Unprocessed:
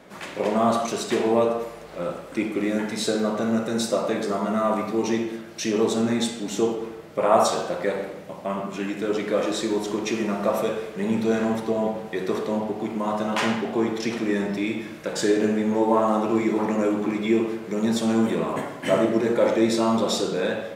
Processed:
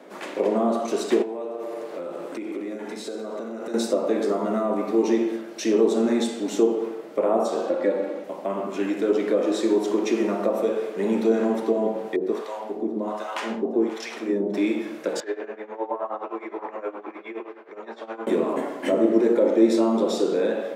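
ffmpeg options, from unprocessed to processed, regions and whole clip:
-filter_complex "[0:a]asettb=1/sr,asplit=3[a][b][c];[a]atrim=end=1.224[d];[b]atrim=start=1.22:end=3.74,asetpts=PTS-STARTPTS,afade=t=in:d=0.004:c=qsin,afade=t=out:st=2.516:d=0.004:c=qsin,aecho=1:1:95|190|285|380|475:0.335|0.144|0.0619|0.0266|0.0115,atrim=end_sample=111132,acompressor=threshold=-31dB:ratio=16:attack=3.2:release=140:knee=1:detection=peak[e];[c]atrim=start=3.736[f];[d][e]acrossfade=d=0.004:c1=hsin:c2=qsin[g];[g][f]acrossfade=d=0.004:c1=qsin:c2=hsin,asettb=1/sr,asplit=3[h][i][j];[h]atrim=end=7.664[k];[i]atrim=start=7.66:end=8.24,asetpts=PTS-STARTPTS,afade=t=in:d=0.004:c=qsin,afade=t=out:st=0.576:d=0.004:c=qsin,highshelf=f=8.8k:g=-10,aecho=1:1:3.6:0.59,atrim=end_sample=25578[l];[j]atrim=start=8.236[m];[k][l]acrossfade=d=0.004:c1=hsin:c2=qsin[n];[n][m]acrossfade=d=0.004:c1=qsin:c2=hsin,asettb=1/sr,asplit=3[o][p][q];[o]atrim=end=12.164[r];[p]atrim=start=12.16:end=14.54,asetpts=PTS-STARTPTS,afade=t=in:d=0.004:c=qsin,afade=t=out:st=2.376:d=0.004:c=qsin,acrossover=split=670[s][t];[s]aeval=exprs='val(0)*(1-1/2+1/2*cos(2*PI*1.3*n/s))':c=same[u];[t]aeval=exprs='val(0)*(1-1/2-1/2*cos(2*PI*1.3*n/s))':c=same[v];[u][v]amix=inputs=2:normalize=0,aecho=1:1:533:0.0891,atrim=end_sample=104958[w];[q]atrim=start=14.536[x];[r][w]acrossfade=d=0.004:c1=hsin:c2=qsin[y];[y][x]acrossfade=d=0.004:c1=qsin:c2=hsin,asettb=1/sr,asplit=3[z][aa][ab];[z]atrim=end=15.204[ac];[aa]atrim=start=15.2:end=18.27,asetpts=PTS-STARTPTS,afade=t=in:d=0.004:c=qsin,afade=t=out:st=3.066:d=0.004:c=qsin,highpass=780,lowpass=2k,tremolo=f=9.6:d=0.83[ad];[ab]atrim=start=18.266[ae];[ac][ad]acrossfade=d=0.004:c1=hsin:c2=qsin[af];[af][ae]acrossfade=d=0.004:c1=qsin:c2=hsin,highpass=f=270:w=0.5412,highpass=f=270:w=1.3066,tiltshelf=f=780:g=5,acrossover=split=480[ag][ah];[ah]acompressor=threshold=-30dB:ratio=5[ai];[ag][ai]amix=inputs=2:normalize=0,volume=2.5dB"

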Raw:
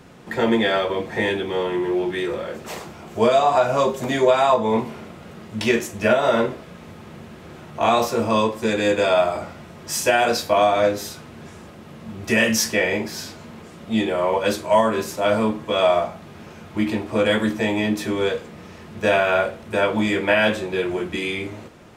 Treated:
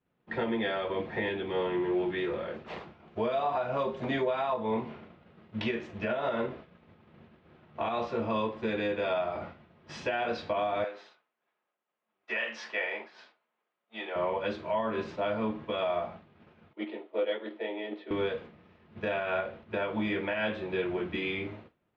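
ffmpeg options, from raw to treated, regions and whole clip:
-filter_complex "[0:a]asettb=1/sr,asplit=3[a][b][c];[a]atrim=end=10.844[d];[b]atrim=start=10.84:end=14.16,asetpts=PTS-STARTPTS,afade=t=in:d=0.004:c=qsin,afade=t=out:st=3.316:d=0.004:c=qsin,highpass=720,highshelf=f=3.3k:g=-5.5[e];[c]atrim=start=14.156[f];[d][e]acrossfade=d=0.004:c1=hsin:c2=qsin[g];[g][f]acrossfade=d=0.004:c1=qsin:c2=hsin,asettb=1/sr,asplit=3[h][i][j];[h]atrim=end=16.734[k];[i]atrim=start=16.73:end=18.11,asetpts=PTS-STARTPTS,afade=t=in:d=0.004:c=qsin,afade=t=out:st=1.376:d=0.004:c=qsin,agate=range=-9dB:threshold=-19dB:ratio=16:release=100:detection=peak,acontrast=78,highpass=f=360:w=0.5412,highpass=f=360:w=1.3066,equalizer=f=780:t=q:w=4:g=-5,equalizer=f=1.1k:t=q:w=4:g=-10,equalizer=f=1.6k:t=q:w=4:g=-9,equalizer=f=2.5k:t=q:w=4:g=-8,lowpass=f=3.5k:w=0.5412,lowpass=f=3.5k:w=1.3066[l];[j]atrim=start=18.106[m];[k][l]acrossfade=d=0.004:c1=hsin:c2=qsin[n];[n][m]acrossfade=d=0.004:c1=qsin:c2=hsin,agate=range=-33dB:threshold=-31dB:ratio=3:detection=peak,lowpass=f=3.6k:w=0.5412,lowpass=f=3.6k:w=1.3066,alimiter=limit=-14dB:level=0:latency=1:release=269,volume=-7dB"

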